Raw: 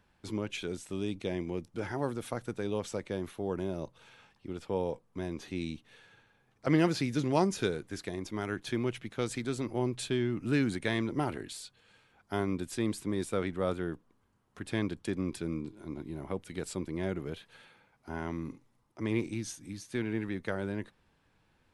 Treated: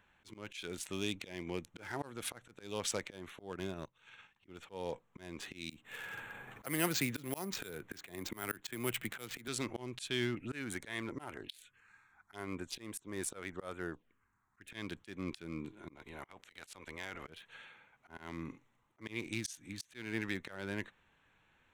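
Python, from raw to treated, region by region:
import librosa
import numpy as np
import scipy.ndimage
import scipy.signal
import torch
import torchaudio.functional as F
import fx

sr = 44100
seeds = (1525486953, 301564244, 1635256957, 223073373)

y = fx.chain(x, sr, fx.peak_eq(hz=600.0, db=-5.5, octaves=1.1),
    fx.transient(attack_db=2, sustain_db=-11), at=(3.52, 4.47))
y = fx.chain(y, sr, fx.high_shelf(hz=4300.0, db=-10.0),
    fx.resample_bad(factor=4, down='none', up='hold'),
    fx.band_squash(depth_pct=70), at=(5.7, 9.48))
y = fx.chain(y, sr, fx.env_phaser(low_hz=490.0, high_hz=4700.0, full_db=-28.0),
    fx.peak_eq(hz=170.0, db=-4.0, octaves=1.9), at=(10.35, 14.72))
y = fx.spec_clip(y, sr, under_db=17, at=(15.95, 17.26), fade=0.02)
y = fx.level_steps(y, sr, step_db=15, at=(15.95, 17.26), fade=0.02)
y = fx.wiener(y, sr, points=9)
y = fx.tilt_shelf(y, sr, db=-9.0, hz=1300.0)
y = fx.auto_swell(y, sr, attack_ms=249.0)
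y = y * 10.0 ** (3.5 / 20.0)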